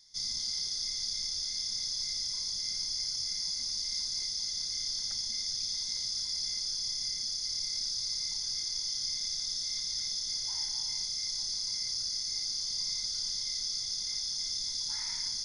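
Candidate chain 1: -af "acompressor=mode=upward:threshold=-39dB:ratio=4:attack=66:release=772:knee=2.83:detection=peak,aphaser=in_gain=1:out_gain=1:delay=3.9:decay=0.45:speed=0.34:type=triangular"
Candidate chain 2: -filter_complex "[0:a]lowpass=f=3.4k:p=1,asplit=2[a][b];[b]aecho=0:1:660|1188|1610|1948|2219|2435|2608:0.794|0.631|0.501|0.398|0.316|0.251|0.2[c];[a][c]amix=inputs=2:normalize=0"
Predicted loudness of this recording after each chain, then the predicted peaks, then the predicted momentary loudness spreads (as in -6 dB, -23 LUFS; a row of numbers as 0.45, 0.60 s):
-30.5, -32.5 LUFS; -1.5, -21.5 dBFS; 1, 1 LU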